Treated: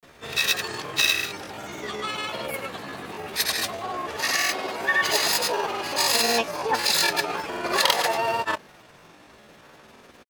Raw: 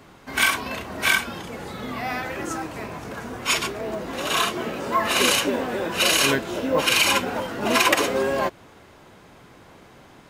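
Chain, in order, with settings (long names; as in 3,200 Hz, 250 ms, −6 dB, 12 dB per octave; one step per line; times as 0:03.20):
pitch shifter +9 semitones
granular cloud, pitch spread up and down by 0 semitones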